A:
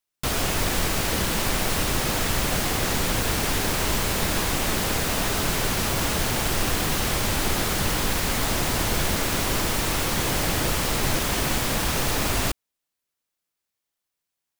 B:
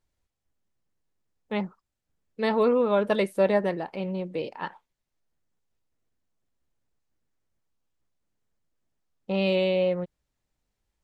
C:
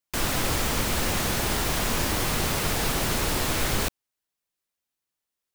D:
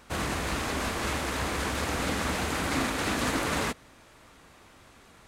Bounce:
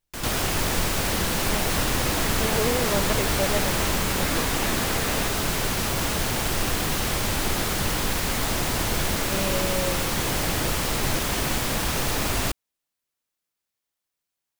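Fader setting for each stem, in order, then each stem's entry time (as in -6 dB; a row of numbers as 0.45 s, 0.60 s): -1.0 dB, -5.5 dB, -6.5 dB, -3.0 dB; 0.00 s, 0.00 s, 0.00 s, 1.55 s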